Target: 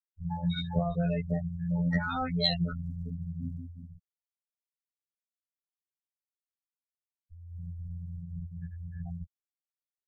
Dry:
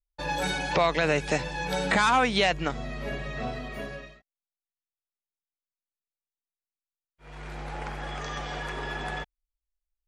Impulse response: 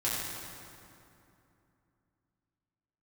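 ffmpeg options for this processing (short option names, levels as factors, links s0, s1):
-filter_complex "[0:a]acrossover=split=1000[s0][s1];[s0]crystalizer=i=5.5:c=0[s2];[s2][s1]amix=inputs=2:normalize=0,acrossover=split=670|3000[s3][s4][s5];[s4]adelay=30[s6];[s5]adelay=80[s7];[s3][s6][s7]amix=inputs=3:normalize=0,asoftclip=type=tanh:threshold=0.237,adynamicsmooth=sensitivity=1:basefreq=6000,bass=f=250:g=9,treble=f=4000:g=14,afftfilt=real='re*gte(hypot(re,im),0.178)':imag='im*gte(hypot(re,im),0.178)':win_size=1024:overlap=0.75,afftfilt=real='hypot(re,im)*cos(PI*b)':imag='0':win_size=2048:overlap=0.75,aecho=1:1:1.5:0.9,acrossover=split=270[s8][s9];[s9]acompressor=threshold=0.01:ratio=2[s10];[s8][s10]amix=inputs=2:normalize=0,aexciter=amount=13.2:drive=8.1:freq=4500,adynamicequalizer=threshold=0.00355:dfrequency=2500:dqfactor=0.7:tfrequency=2500:tqfactor=0.7:attack=5:release=100:ratio=0.375:range=2.5:mode=boostabove:tftype=highshelf"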